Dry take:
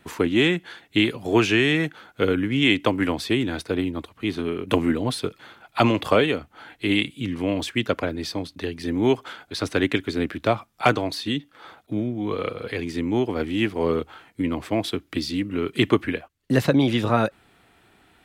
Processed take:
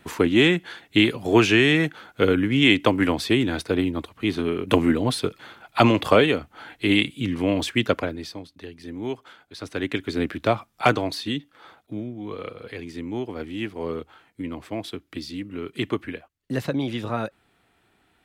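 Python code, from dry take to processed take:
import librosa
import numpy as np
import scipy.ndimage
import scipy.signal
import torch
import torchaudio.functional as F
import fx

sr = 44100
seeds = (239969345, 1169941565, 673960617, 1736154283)

y = fx.gain(x, sr, db=fx.line((7.91, 2.0), (8.46, -10.0), (9.57, -10.0), (10.17, 0.0), (11.07, 0.0), (12.15, -7.0)))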